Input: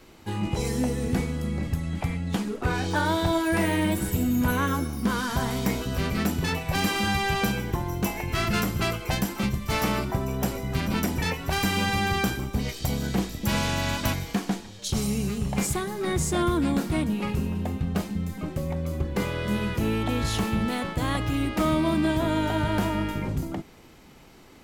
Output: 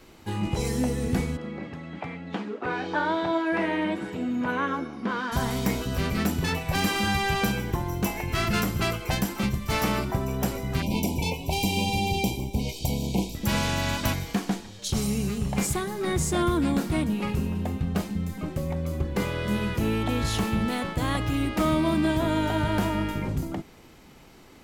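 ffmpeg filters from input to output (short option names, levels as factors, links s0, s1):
-filter_complex "[0:a]asplit=3[s0][s1][s2];[s0]afade=t=out:st=1.36:d=0.02[s3];[s1]highpass=260,lowpass=2800,afade=t=in:st=1.36:d=0.02,afade=t=out:st=5.31:d=0.02[s4];[s2]afade=t=in:st=5.31:d=0.02[s5];[s3][s4][s5]amix=inputs=3:normalize=0,asettb=1/sr,asplit=3[s6][s7][s8];[s6]atrim=end=10.824[s9];[s7]atrim=start=10.82:end=13.35,asetpts=PTS-STARTPTS,afade=t=in:d=0.004:c=qsin,afade=t=out:st=2.526:d=0.004:c=qsin,asuperstop=centerf=1500:order=20:qfactor=1.3[s10];[s8]atrim=start=13.346[s11];[s9][s10]acrossfade=d=0.004:c1=hsin:c2=qsin[s12];[s12][s11]acrossfade=d=0.004:c1=qsin:c2=hsin"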